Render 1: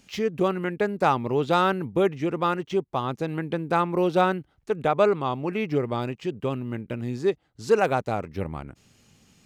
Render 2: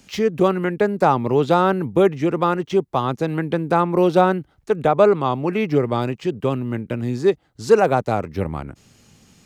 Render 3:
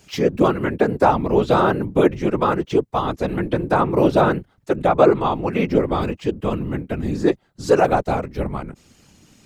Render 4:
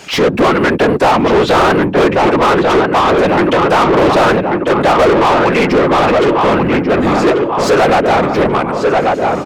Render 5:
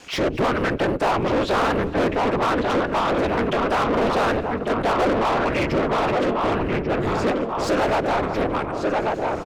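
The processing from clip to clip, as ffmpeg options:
-filter_complex "[0:a]equalizer=f=2700:t=o:w=0.77:g=-2.5,acrossover=split=220|1100[s0][s1][s2];[s2]alimiter=level_in=1.12:limit=0.0631:level=0:latency=1:release=172,volume=0.891[s3];[s0][s1][s3]amix=inputs=3:normalize=0,volume=2.11"
-af "afftfilt=real='hypot(re,im)*cos(2*PI*random(0))':imag='hypot(re,im)*sin(2*PI*random(1))':win_size=512:overlap=0.75,volume=2"
-filter_complex "[0:a]asplit=2[s0][s1];[s1]adelay=1139,lowpass=f=2900:p=1,volume=0.355,asplit=2[s2][s3];[s3]adelay=1139,lowpass=f=2900:p=1,volume=0.46,asplit=2[s4][s5];[s5]adelay=1139,lowpass=f=2900:p=1,volume=0.46,asplit=2[s6][s7];[s7]adelay=1139,lowpass=f=2900:p=1,volume=0.46,asplit=2[s8][s9];[s9]adelay=1139,lowpass=f=2900:p=1,volume=0.46[s10];[s0][s2][s4][s6][s8][s10]amix=inputs=6:normalize=0,asplit=2[s11][s12];[s12]highpass=f=720:p=1,volume=44.7,asoftclip=type=tanh:threshold=0.891[s13];[s11][s13]amix=inputs=2:normalize=0,lowpass=f=2200:p=1,volume=0.501,volume=0.841"
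-af "aeval=exprs='val(0)*sin(2*PI*110*n/s)':c=same,aecho=1:1:221|442|663|884:0.0891|0.0472|0.025|0.0133,volume=0.422"

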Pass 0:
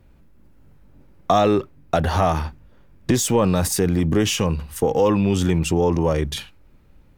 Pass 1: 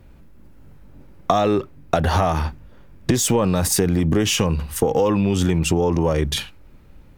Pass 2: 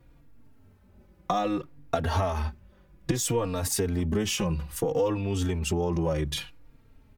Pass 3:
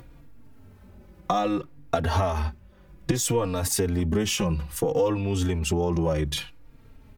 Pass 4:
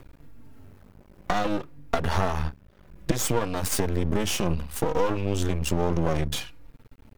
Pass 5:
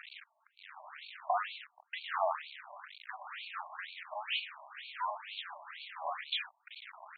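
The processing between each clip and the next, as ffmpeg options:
-af "acompressor=threshold=0.1:ratio=6,volume=1.88"
-filter_complex "[0:a]asplit=2[s0][s1];[s1]adelay=3.7,afreqshift=-0.62[s2];[s0][s2]amix=inputs=2:normalize=1,volume=0.531"
-af "acompressor=mode=upward:threshold=0.00631:ratio=2.5,volume=1.33"
-af "aeval=exprs='max(val(0),0)':c=same,volume=1.41"
-af "aeval=exprs='val(0)+0.5*0.0631*sgn(val(0))':c=same,highpass=480,lowpass=7400,afftfilt=real='re*between(b*sr/1024,790*pow(3200/790,0.5+0.5*sin(2*PI*2.1*pts/sr))/1.41,790*pow(3200/790,0.5+0.5*sin(2*PI*2.1*pts/sr))*1.41)':imag='im*between(b*sr/1024,790*pow(3200/790,0.5+0.5*sin(2*PI*2.1*pts/sr))/1.41,790*pow(3200/790,0.5+0.5*sin(2*PI*2.1*pts/sr))*1.41)':win_size=1024:overlap=0.75,volume=0.708"

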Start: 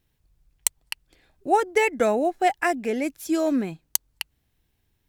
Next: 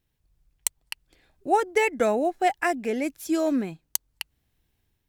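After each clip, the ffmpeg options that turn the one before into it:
-af "dynaudnorm=f=120:g=5:m=1.58,volume=0.562"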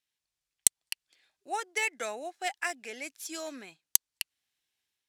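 -af "aderivative,adynamicsmooth=sensitivity=3.5:basefreq=5800,volume=2.24"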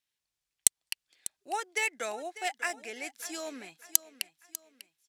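-af "aecho=1:1:596|1192|1788:0.168|0.0655|0.0255"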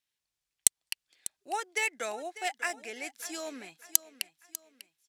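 -af anull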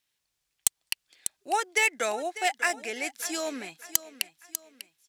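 -af "asoftclip=type=tanh:threshold=0.141,volume=2.24"

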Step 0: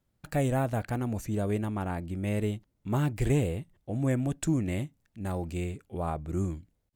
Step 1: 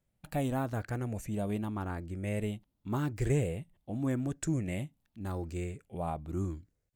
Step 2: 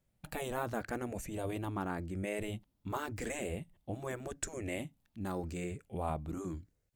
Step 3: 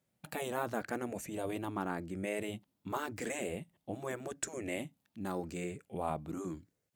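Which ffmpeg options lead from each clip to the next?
-af "afftfilt=real='re*pow(10,6/40*sin(2*PI*(0.51*log(max(b,1)*sr/1024/100)/log(2)-(0.86)*(pts-256)/sr)))':imag='im*pow(10,6/40*sin(2*PI*(0.51*log(max(b,1)*sr/1024/100)/log(2)-(0.86)*(pts-256)/sr)))':win_size=1024:overlap=0.75,volume=0.596"
-af "afftfilt=real='re*lt(hypot(re,im),0.126)':imag='im*lt(hypot(re,im),0.126)':win_size=1024:overlap=0.75,volume=1.19"
-af "highpass=150,volume=1.12"

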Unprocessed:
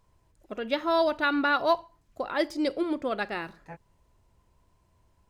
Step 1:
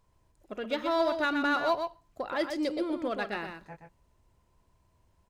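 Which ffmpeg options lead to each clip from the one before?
-filter_complex "[0:a]asplit=2[s0][s1];[s1]asoftclip=type=hard:threshold=0.0501,volume=0.473[s2];[s0][s2]amix=inputs=2:normalize=0,aecho=1:1:124:0.473,volume=0.501"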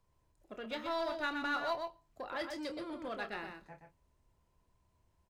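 -filter_complex "[0:a]asplit=2[s0][s1];[s1]adelay=27,volume=0.335[s2];[s0][s2]amix=inputs=2:normalize=0,acrossover=split=180|700|4600[s3][s4][s5][s6];[s4]asoftclip=type=tanh:threshold=0.0158[s7];[s3][s7][s5][s6]amix=inputs=4:normalize=0,volume=0.473"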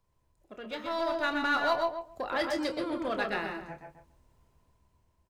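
-filter_complex "[0:a]dynaudnorm=f=490:g=5:m=2.66,asplit=2[s0][s1];[s1]adelay=139,lowpass=f=1300:p=1,volume=0.562,asplit=2[s2][s3];[s3]adelay=139,lowpass=f=1300:p=1,volume=0.17,asplit=2[s4][s5];[s5]adelay=139,lowpass=f=1300:p=1,volume=0.17[s6];[s2][s4][s6]amix=inputs=3:normalize=0[s7];[s0][s7]amix=inputs=2:normalize=0"

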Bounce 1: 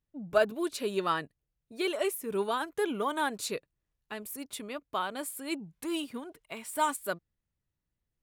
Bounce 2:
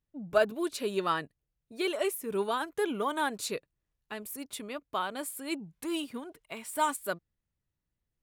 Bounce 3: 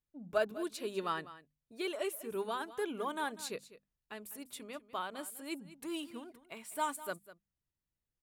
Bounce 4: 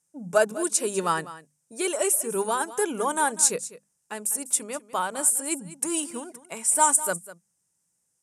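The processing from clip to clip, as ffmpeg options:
-af anull
-af "bandreject=f=50:t=h:w=6,bandreject=f=100:t=h:w=6,bandreject=f=150:t=h:w=6,bandreject=f=200:t=h:w=6,bandreject=f=250:t=h:w=6,aecho=1:1:199:0.158,volume=0.473"
-af "highpass=140,equalizer=f=170:t=q:w=4:g=8,equalizer=f=510:t=q:w=4:g=5,equalizer=f=870:t=q:w=4:g=6,equalizer=f=1500:t=q:w=4:g=3,equalizer=f=4400:t=q:w=4:g=-7,equalizer=f=8700:t=q:w=4:g=4,lowpass=f=9500:w=0.5412,lowpass=f=9500:w=1.3066,aexciter=amount=7.6:drive=4.5:freq=5100,volume=2.66"

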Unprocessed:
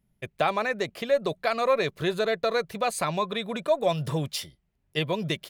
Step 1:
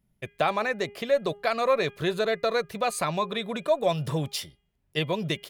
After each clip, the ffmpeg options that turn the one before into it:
-af "bandreject=f=407.8:t=h:w=4,bandreject=f=815.6:t=h:w=4,bandreject=f=1223.4:t=h:w=4,bandreject=f=1631.2:t=h:w=4,bandreject=f=2039:t=h:w=4,bandreject=f=2446.8:t=h:w=4,bandreject=f=2854.6:t=h:w=4,bandreject=f=3262.4:t=h:w=4"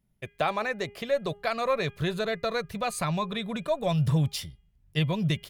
-af "asubboost=boost=6:cutoff=160,volume=0.794"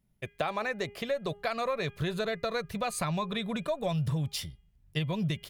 -af "acompressor=threshold=0.0447:ratio=6"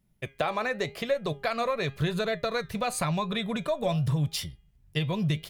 -af "flanger=delay=5.4:depth=3.5:regen=81:speed=0.9:shape=triangular,volume=2.37"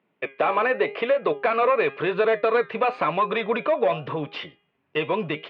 -filter_complex "[0:a]asplit=2[s0][s1];[s1]highpass=f=720:p=1,volume=8.91,asoftclip=type=tanh:threshold=0.237[s2];[s0][s2]amix=inputs=2:normalize=0,lowpass=f=1600:p=1,volume=0.501,highpass=270,equalizer=f=290:t=q:w=4:g=7,equalizer=f=450:t=q:w=4:g=7,equalizer=f=1100:t=q:w=4:g=4,equalizer=f=2600:t=q:w=4:g=5,lowpass=f=3100:w=0.5412,lowpass=f=3100:w=1.3066"

